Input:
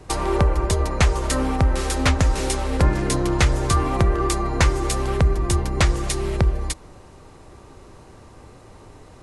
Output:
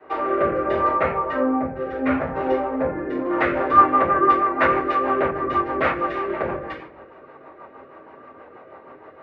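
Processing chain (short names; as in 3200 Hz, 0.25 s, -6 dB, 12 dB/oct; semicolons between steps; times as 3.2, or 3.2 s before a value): 0.88–3.3 spectral contrast raised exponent 1.5; LPF 2100 Hz 24 dB/oct; reverb RT60 0.50 s, pre-delay 3 ms, DRR -11.5 dB; rotary speaker horn 0.7 Hz, later 6.3 Hz, at 2.96; HPF 470 Hz 12 dB/oct; gain -2.5 dB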